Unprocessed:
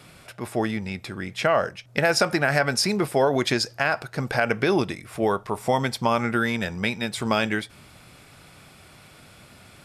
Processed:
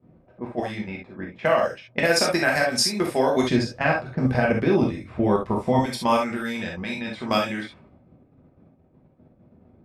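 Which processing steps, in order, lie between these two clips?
0:03.43–0:05.79: RIAA equalisation playback
low-pass that shuts in the quiet parts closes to 360 Hz, open at −19 dBFS
high-pass filter 93 Hz 6 dB per octave
high-shelf EQ 6,200 Hz +3 dB
notch filter 1,400 Hz, Q 15
output level in coarse steps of 11 dB
reverb whose tail is shaped and stops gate 90 ms flat, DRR −1.5 dB

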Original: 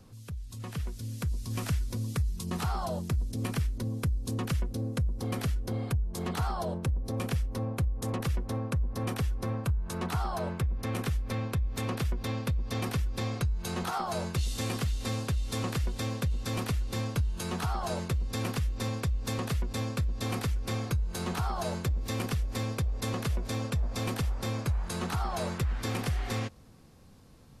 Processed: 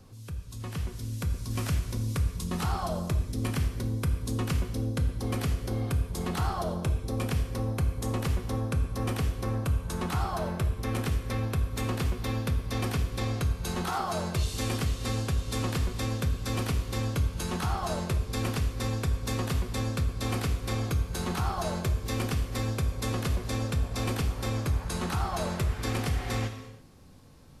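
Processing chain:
reverb whose tail is shaped and stops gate 360 ms falling, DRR 5.5 dB
level +1 dB

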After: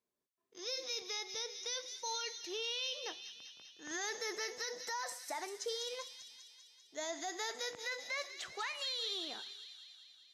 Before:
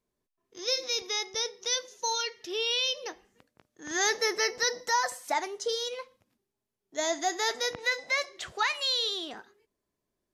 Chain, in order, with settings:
high-pass filter 260 Hz 6 dB per octave
brickwall limiter −25 dBFS, peak gain reduction 10.5 dB
on a send: delay with a high-pass on its return 197 ms, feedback 67%, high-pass 2,800 Hz, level −7 dB
on the sum: level −6 dB

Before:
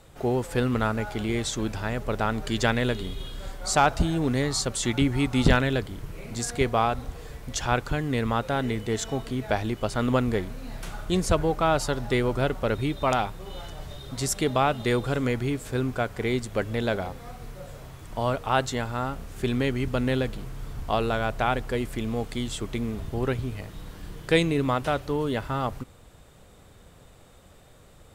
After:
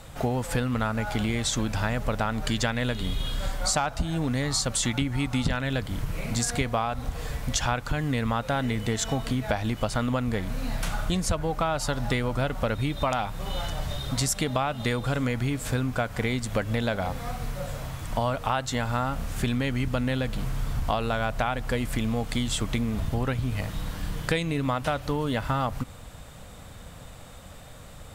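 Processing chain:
parametric band 380 Hz −11 dB 0.44 octaves
downward compressor 10 to 1, threshold −31 dBFS, peak gain reduction 17 dB
level +8.5 dB

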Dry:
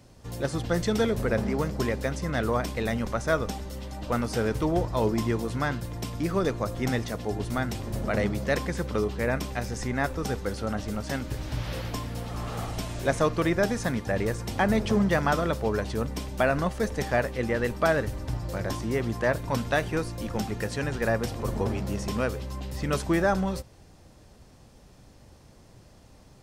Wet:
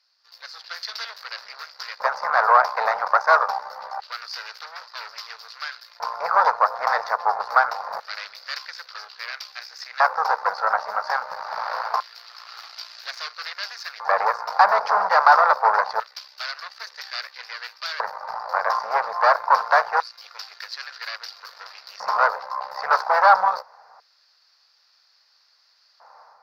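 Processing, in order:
harmonic generator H 5 −18 dB, 8 −11 dB, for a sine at −10 dBFS
automatic gain control gain up to 7 dB
auto-filter high-pass square 0.25 Hz 880–3,100 Hz
drawn EQ curve 190 Hz 0 dB, 320 Hz −24 dB, 450 Hz +7 dB, 1,400 Hz +14 dB, 3,200 Hz −12 dB, 4,700 Hz +10 dB, 8,500 Hz −27 dB, 13,000 Hz −8 dB
level −12.5 dB

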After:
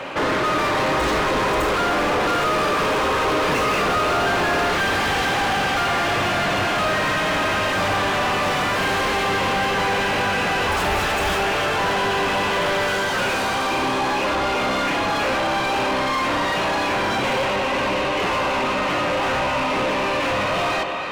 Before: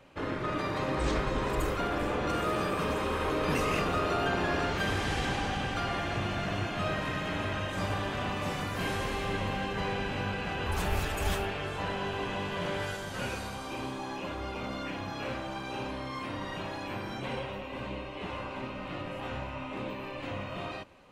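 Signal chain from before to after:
echo with a time of its own for lows and highs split 790 Hz, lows 142 ms, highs 301 ms, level −15 dB
mid-hump overdrive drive 33 dB, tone 2,400 Hz, clips at −18.5 dBFS
level +5 dB

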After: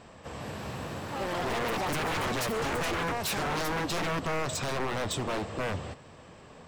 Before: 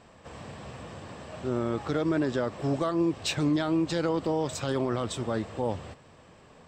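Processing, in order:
delay with pitch and tempo change per echo 238 ms, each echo +7 semitones, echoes 3, each echo −6 dB
wave folding −29 dBFS
level +3.5 dB

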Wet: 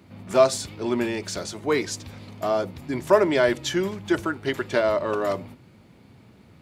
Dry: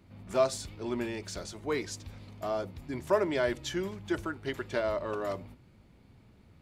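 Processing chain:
high-pass filter 110 Hz 12 dB per octave
level +9 dB

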